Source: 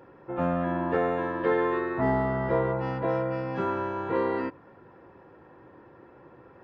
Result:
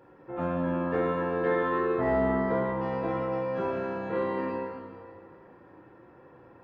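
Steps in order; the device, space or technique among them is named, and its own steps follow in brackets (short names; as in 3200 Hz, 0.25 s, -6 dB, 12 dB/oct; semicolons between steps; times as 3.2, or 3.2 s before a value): stairwell (reverb RT60 2.2 s, pre-delay 16 ms, DRR -1 dB); gain -5 dB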